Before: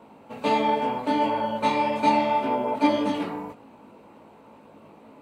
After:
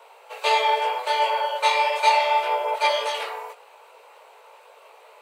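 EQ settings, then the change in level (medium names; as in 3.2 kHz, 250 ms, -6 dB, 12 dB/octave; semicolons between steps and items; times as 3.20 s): steep high-pass 420 Hz 72 dB/octave; tilt shelf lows -6 dB, about 1.3 kHz; +5.0 dB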